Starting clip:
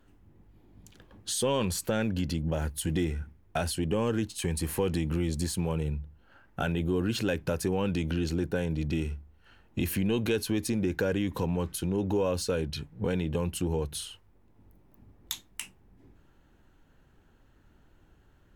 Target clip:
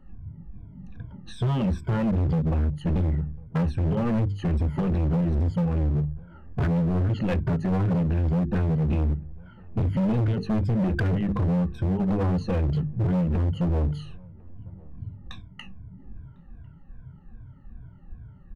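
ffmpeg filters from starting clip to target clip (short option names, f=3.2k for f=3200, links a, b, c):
-filter_complex "[0:a]afftfilt=real='re*pow(10,23/40*sin(2*PI*(1.7*log(max(b,1)*sr/1024/100)/log(2)-(-2.5)*(pts-256)/sr)))':imag='im*pow(10,23/40*sin(2*PI*(1.7*log(max(b,1)*sr/1024/100)/log(2)-(-2.5)*(pts-256)/sr)))':win_size=1024:overlap=0.75,lowpass=1.6k,lowshelf=f=240:t=q:w=1.5:g=13,bandreject=f=50:t=h:w=6,bandreject=f=100:t=h:w=6,bandreject=f=150:t=h:w=6,bandreject=f=200:t=h:w=6,bandreject=f=250:t=h:w=6,bandreject=f=300:t=h:w=6,bandreject=f=350:t=h:w=6,bandreject=f=400:t=h:w=6,bandreject=f=450:t=h:w=6,acompressor=threshold=-13dB:ratio=16,asoftclip=type=hard:threshold=-21dB,asplit=2[a][b];[b]adelay=1050,volume=-26dB,highshelf=f=4k:g=-23.6[c];[a][c]amix=inputs=2:normalize=0"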